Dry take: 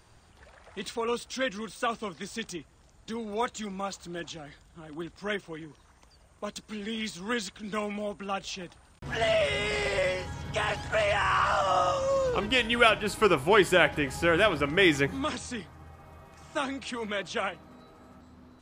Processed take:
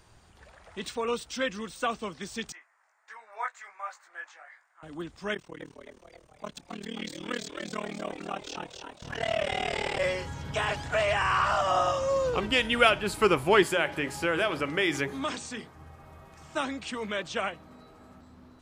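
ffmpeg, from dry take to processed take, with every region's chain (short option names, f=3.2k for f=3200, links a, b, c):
-filter_complex "[0:a]asettb=1/sr,asplit=3[a][b][c];[a]atrim=end=2.524[d];[b]atrim=start=2.52:end=4.83,asetpts=PTS-STARTPTS,afade=t=in:d=0.004:c=qsin,afade=t=out:st=2.306:d=0.004:c=qsin,highshelf=f=2.5k:t=q:w=3:g=-9,flanger=delay=18:depth=2.6:speed=1.4,highpass=f=760:w=0.5412,highpass=f=760:w=1.3066[e];[c]atrim=start=4.826[f];[d][e]acrossfade=d=0.004:c1=hsin:c2=qsin[g];[g][f]acrossfade=d=0.004:c1=qsin:c2=hsin,asettb=1/sr,asplit=3[h][i][j];[h]atrim=end=5.344[k];[i]atrim=start=5.34:end=10,asetpts=PTS-STARTPTS,afade=t=in:d=0.004:c=qsin,afade=t=out:st=4.656:d=0.004:c=qsin,tremolo=f=38:d=1,asplit=8[l][m][n][o][p][q][r][s];[m]adelay=265,afreqshift=97,volume=-5dB[t];[n]adelay=530,afreqshift=194,volume=-10.4dB[u];[o]adelay=795,afreqshift=291,volume=-15.7dB[v];[p]adelay=1060,afreqshift=388,volume=-21.1dB[w];[q]adelay=1325,afreqshift=485,volume=-26.4dB[x];[r]adelay=1590,afreqshift=582,volume=-31.8dB[y];[s]adelay=1855,afreqshift=679,volume=-37.1dB[z];[l][t][u][v][w][x][y][z]amix=inputs=8:normalize=0,atrim=end_sample=205506[aa];[j]atrim=start=9.996[ab];[k][aa]acrossfade=d=0.004:c1=hsin:c2=qsin[ac];[ac][ab]acrossfade=d=0.004:c1=qsin:c2=hsin,asettb=1/sr,asplit=3[ad][ae][af];[ad]atrim=end=13.634[ag];[ae]atrim=start=13.63:end=15.76,asetpts=PTS-STARTPTS,afade=t=in:d=0.004:c=qsin,afade=t=out:st=2.126:d=0.004:c=qsin,highpass=f=170:p=1,acompressor=threshold=-24dB:ratio=2:attack=3.2:release=140:knee=1:detection=peak,bandreject=f=60:t=h:w=6,bandreject=f=120:t=h:w=6,bandreject=f=180:t=h:w=6,bandreject=f=240:t=h:w=6,bandreject=f=300:t=h:w=6,bandreject=f=360:t=h:w=6,bandreject=f=420:t=h:w=6,bandreject=f=480:t=h:w=6[ah];[af]atrim=start=15.756[ai];[ag][ah]acrossfade=d=0.004:c1=hsin:c2=qsin[aj];[aj][ai]acrossfade=d=0.004:c1=qsin:c2=hsin"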